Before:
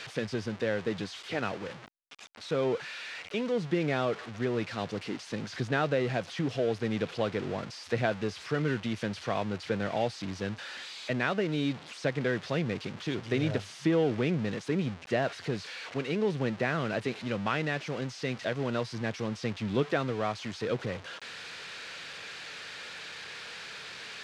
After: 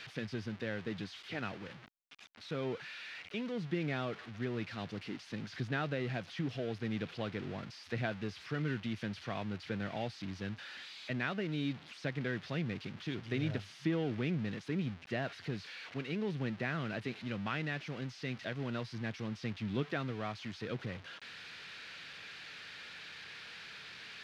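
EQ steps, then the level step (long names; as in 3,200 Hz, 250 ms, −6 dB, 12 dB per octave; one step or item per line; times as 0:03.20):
graphic EQ with 10 bands 500 Hz −7 dB, 1,000 Hz −4 dB, 8,000 Hz −10 dB
−4.0 dB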